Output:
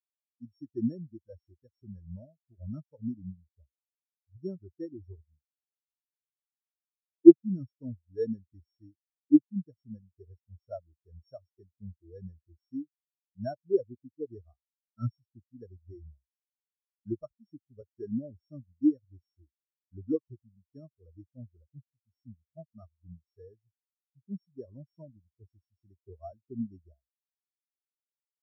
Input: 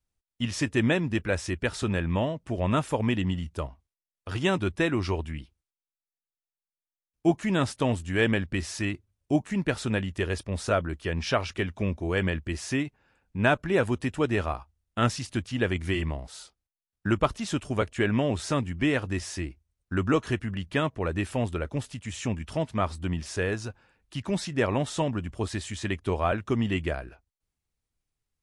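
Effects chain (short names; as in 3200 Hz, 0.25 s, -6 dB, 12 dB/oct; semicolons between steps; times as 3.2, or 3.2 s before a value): sample sorter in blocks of 8 samples; spectral expander 4:1; gain +8 dB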